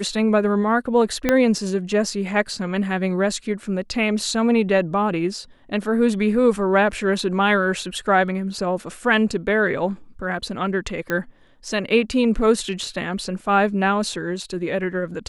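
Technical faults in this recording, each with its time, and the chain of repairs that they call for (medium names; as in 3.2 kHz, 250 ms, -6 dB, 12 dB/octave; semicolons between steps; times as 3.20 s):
1.29 s: pop -4 dBFS
11.10 s: pop -11 dBFS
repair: de-click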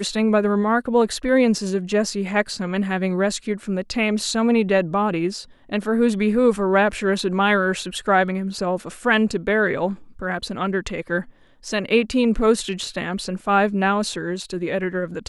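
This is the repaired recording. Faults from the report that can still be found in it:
1.29 s: pop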